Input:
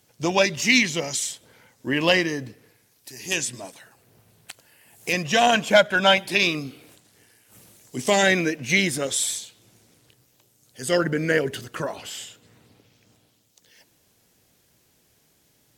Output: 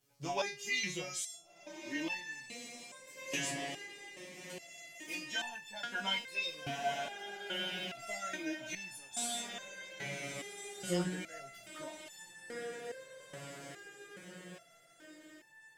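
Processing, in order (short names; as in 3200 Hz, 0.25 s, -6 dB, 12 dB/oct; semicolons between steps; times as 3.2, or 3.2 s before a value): chorus voices 2, 0.25 Hz, delay 17 ms, depth 3.2 ms; diffused feedback echo 1.464 s, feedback 54%, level -7.5 dB; stepped resonator 2.4 Hz 140–890 Hz; gain +2.5 dB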